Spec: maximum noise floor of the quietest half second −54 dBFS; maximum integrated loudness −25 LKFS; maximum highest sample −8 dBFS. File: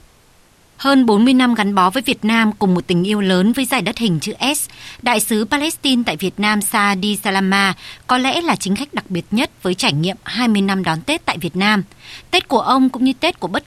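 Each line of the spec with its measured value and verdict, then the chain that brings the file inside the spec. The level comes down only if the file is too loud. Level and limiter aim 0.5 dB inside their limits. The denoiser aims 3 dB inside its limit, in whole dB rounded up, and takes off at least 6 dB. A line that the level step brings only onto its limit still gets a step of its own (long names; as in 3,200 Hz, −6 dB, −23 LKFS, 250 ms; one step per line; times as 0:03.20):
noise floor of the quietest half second −51 dBFS: out of spec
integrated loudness −16.5 LKFS: out of spec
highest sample −2.5 dBFS: out of spec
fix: level −9 dB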